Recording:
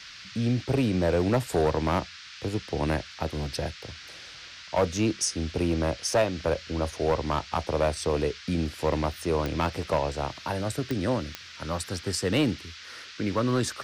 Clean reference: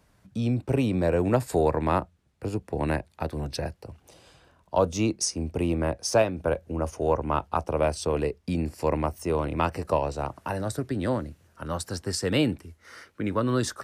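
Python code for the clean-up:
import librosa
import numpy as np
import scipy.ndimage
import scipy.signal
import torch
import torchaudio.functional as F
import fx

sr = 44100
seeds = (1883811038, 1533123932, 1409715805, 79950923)

y = fx.fix_declip(x, sr, threshold_db=-17.0)
y = fx.fix_declick_ar(y, sr, threshold=10.0)
y = fx.noise_reduce(y, sr, print_start_s=4.22, print_end_s=4.72, reduce_db=15.0)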